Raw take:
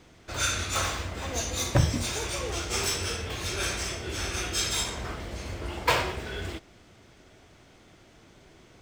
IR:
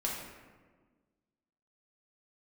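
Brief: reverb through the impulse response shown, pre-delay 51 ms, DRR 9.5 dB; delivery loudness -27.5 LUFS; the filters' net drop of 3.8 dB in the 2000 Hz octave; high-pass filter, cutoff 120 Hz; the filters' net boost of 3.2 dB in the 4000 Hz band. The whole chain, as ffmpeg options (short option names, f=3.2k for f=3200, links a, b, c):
-filter_complex "[0:a]highpass=120,equalizer=f=2k:t=o:g=-7,equalizer=f=4k:t=o:g=6,asplit=2[a][b];[1:a]atrim=start_sample=2205,adelay=51[c];[b][c]afir=irnorm=-1:irlink=0,volume=-14dB[d];[a][d]amix=inputs=2:normalize=0,volume=1dB"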